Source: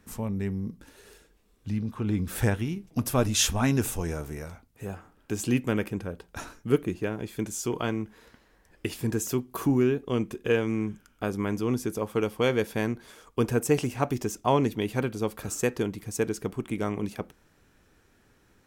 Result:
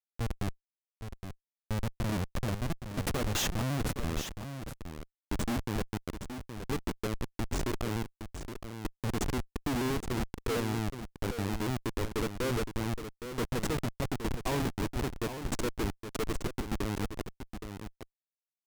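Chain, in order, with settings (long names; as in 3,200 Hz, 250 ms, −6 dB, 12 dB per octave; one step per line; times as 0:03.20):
gate on every frequency bin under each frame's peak −15 dB strong
low-shelf EQ 120 Hz −3.5 dB
comparator with hysteresis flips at −27.5 dBFS
single-tap delay 818 ms −9 dB
pitch modulation by a square or saw wave saw down 5.4 Hz, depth 100 cents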